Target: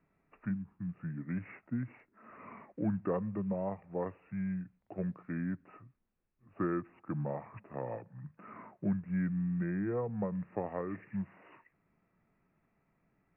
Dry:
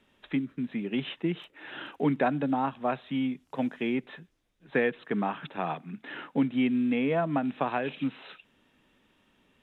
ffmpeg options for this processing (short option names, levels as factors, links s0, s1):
-af "asetrate=31752,aresample=44100,lowpass=2900,highshelf=f=2000:g=-11,volume=0.447"